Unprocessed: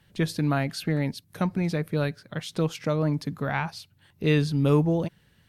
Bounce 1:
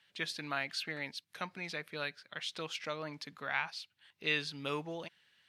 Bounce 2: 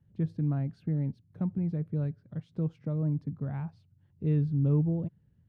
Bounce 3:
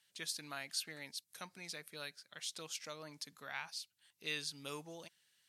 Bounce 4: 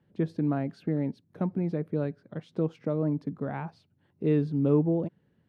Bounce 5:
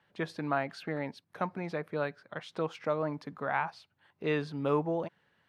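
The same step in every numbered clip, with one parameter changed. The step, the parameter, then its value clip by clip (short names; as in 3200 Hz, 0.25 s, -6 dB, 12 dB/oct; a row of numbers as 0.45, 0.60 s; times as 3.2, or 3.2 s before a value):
band-pass, frequency: 2900, 100, 7500, 310, 960 Hz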